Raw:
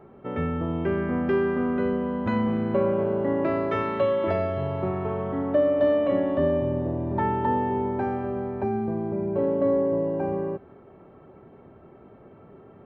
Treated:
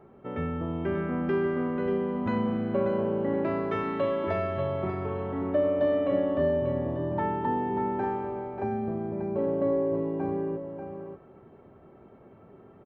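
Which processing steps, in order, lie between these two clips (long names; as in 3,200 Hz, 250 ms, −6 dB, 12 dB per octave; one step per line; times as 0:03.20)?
single-tap delay 588 ms −7.5 dB
level −4 dB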